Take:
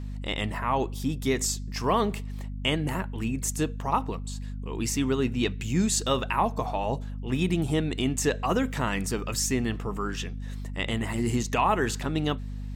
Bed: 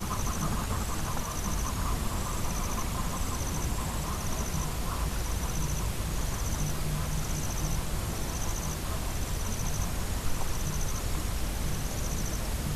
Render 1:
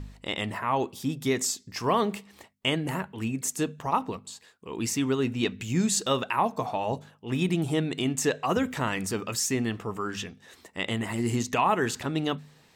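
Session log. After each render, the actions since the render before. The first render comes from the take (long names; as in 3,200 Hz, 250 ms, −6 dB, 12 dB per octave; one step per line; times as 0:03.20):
hum removal 50 Hz, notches 5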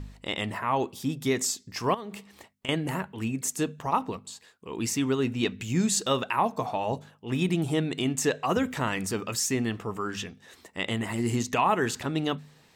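0:01.94–0:02.69: downward compressor 8 to 1, threshold −34 dBFS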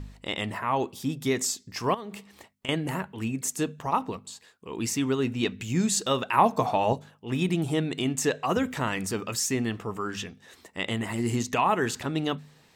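0:06.33–0:06.93: clip gain +5 dB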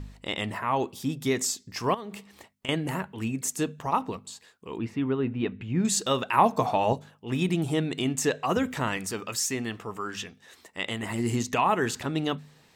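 0:04.78–0:05.85: high-frequency loss of the air 490 metres
0:08.97–0:11.03: low-shelf EQ 430 Hz −6 dB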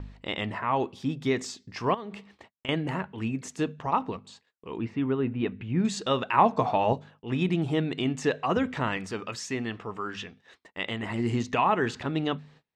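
low-pass filter 3,800 Hz 12 dB per octave
noise gate −53 dBFS, range −29 dB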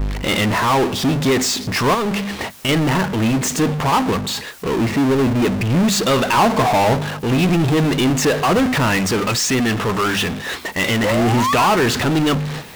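0:11.04–0:11.67: sound drawn into the spectrogram rise 490–1,500 Hz −34 dBFS
power curve on the samples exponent 0.35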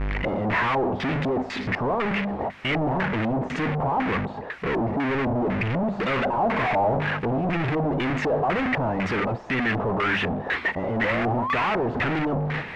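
soft clipping −24.5 dBFS, distortion −9 dB
auto-filter low-pass square 2 Hz 740–2,100 Hz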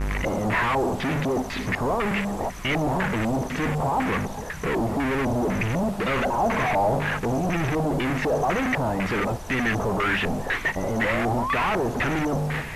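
mix in bed −7.5 dB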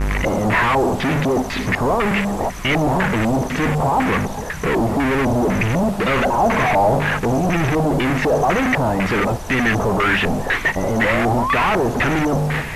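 level +6.5 dB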